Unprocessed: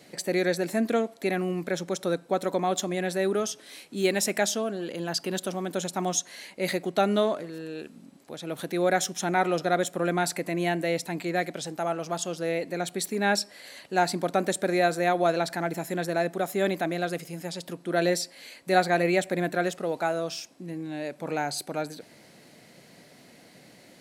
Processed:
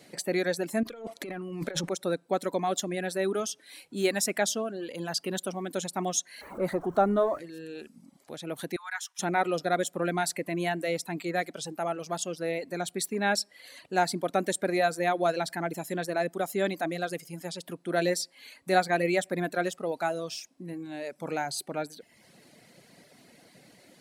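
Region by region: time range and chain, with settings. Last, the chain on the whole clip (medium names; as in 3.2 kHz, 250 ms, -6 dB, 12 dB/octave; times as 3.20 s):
0.83–1.89 s: waveshaping leveller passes 1 + treble shelf 8.2 kHz -6.5 dB + compressor with a negative ratio -33 dBFS
6.41–7.39 s: jump at every zero crossing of -33.5 dBFS + resonant high shelf 1.8 kHz -13 dB, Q 1.5 + band-stop 5 kHz, Q 7.9
8.76–9.19 s: Chebyshev high-pass 930 Hz, order 5 + treble shelf 2.5 kHz -9 dB
whole clip: reverb removal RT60 0.78 s; peaking EQ 9.4 kHz +3 dB 0.25 oct; trim -1.5 dB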